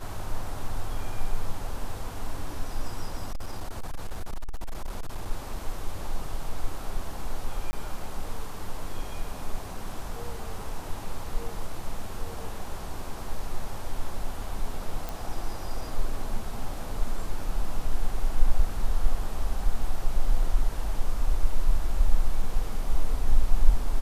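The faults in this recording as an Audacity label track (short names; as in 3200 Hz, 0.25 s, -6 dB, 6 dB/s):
3.310000	5.310000	clipped -26.5 dBFS
7.710000	7.730000	gap 20 ms
15.090000	15.090000	pop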